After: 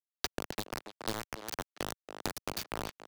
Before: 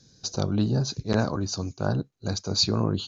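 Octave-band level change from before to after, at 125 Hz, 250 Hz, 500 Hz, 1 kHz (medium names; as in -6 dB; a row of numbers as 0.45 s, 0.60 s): -22.5 dB, -17.0 dB, -11.5 dB, -5.0 dB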